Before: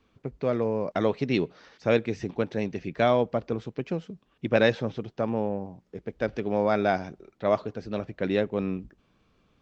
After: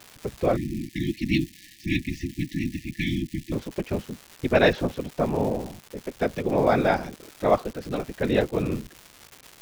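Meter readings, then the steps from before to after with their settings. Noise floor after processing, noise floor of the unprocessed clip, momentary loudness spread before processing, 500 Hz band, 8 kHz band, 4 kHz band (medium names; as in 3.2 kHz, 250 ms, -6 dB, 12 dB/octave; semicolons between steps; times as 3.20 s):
-52 dBFS, -68 dBFS, 12 LU, +0.5 dB, no reading, +3.5 dB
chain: whisper effect; crackle 400 per s -36 dBFS; spectral selection erased 0.56–3.52 s, 350–1700 Hz; trim +3 dB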